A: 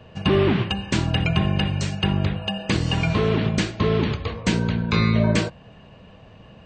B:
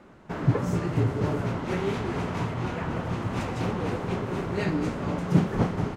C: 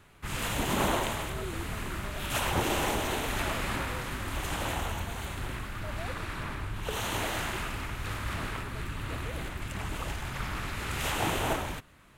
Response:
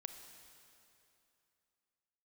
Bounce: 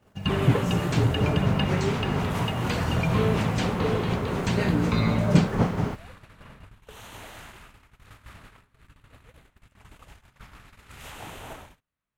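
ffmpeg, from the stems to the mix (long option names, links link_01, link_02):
-filter_complex "[0:a]aphaser=in_gain=1:out_gain=1:delay=2.8:decay=0.4:speed=0.62:type=sinusoidal,volume=-7.5dB[link_01];[1:a]acrusher=bits=9:mix=0:aa=0.000001,volume=2dB[link_02];[2:a]volume=-11dB[link_03];[link_01][link_02][link_03]amix=inputs=3:normalize=0,agate=range=-20dB:threshold=-44dB:ratio=16:detection=peak,equalizer=frequency=340:width_type=o:width=0.29:gain=-5"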